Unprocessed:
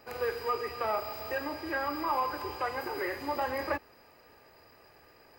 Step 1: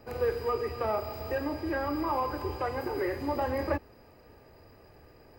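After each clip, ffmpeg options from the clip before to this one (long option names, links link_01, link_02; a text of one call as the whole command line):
ffmpeg -i in.wav -filter_complex "[0:a]lowshelf=frequency=180:gain=9.5,acrossover=split=700[link_01][link_02];[link_01]acontrast=89[link_03];[link_03][link_02]amix=inputs=2:normalize=0,volume=-3.5dB" out.wav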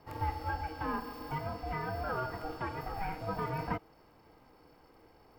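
ffmpeg -i in.wav -af "aeval=exprs='val(0)*sin(2*PI*390*n/s)':channel_layout=same,volume=-2.5dB" out.wav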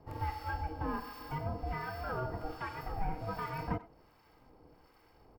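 ffmpeg -i in.wav -filter_complex "[0:a]acrossover=split=910[link_01][link_02];[link_01]aeval=exprs='val(0)*(1-0.7/2+0.7/2*cos(2*PI*1.3*n/s))':channel_layout=same[link_03];[link_02]aeval=exprs='val(0)*(1-0.7/2-0.7/2*cos(2*PI*1.3*n/s))':channel_layout=same[link_04];[link_03][link_04]amix=inputs=2:normalize=0,lowshelf=frequency=110:gain=6,asplit=2[link_05][link_06];[link_06]adelay=90,highpass=300,lowpass=3400,asoftclip=type=hard:threshold=-31dB,volume=-16dB[link_07];[link_05][link_07]amix=inputs=2:normalize=0,volume=1dB" out.wav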